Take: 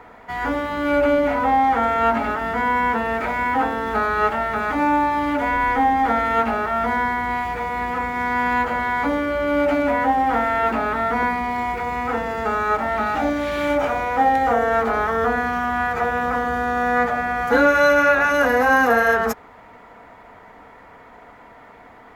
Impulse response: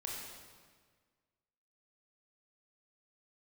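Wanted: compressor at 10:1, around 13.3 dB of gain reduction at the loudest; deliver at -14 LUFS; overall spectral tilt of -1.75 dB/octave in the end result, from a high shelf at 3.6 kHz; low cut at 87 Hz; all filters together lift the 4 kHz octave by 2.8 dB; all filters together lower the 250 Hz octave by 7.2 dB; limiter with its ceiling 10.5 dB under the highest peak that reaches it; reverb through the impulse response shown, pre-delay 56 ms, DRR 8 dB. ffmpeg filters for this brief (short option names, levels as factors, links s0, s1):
-filter_complex "[0:a]highpass=87,equalizer=f=250:t=o:g=-8,highshelf=f=3600:g=-7.5,equalizer=f=4000:t=o:g=8.5,acompressor=threshold=0.0447:ratio=10,alimiter=level_in=1.78:limit=0.0631:level=0:latency=1,volume=0.562,asplit=2[s0][s1];[1:a]atrim=start_sample=2205,adelay=56[s2];[s1][s2]afir=irnorm=-1:irlink=0,volume=0.398[s3];[s0][s3]amix=inputs=2:normalize=0,volume=12.6"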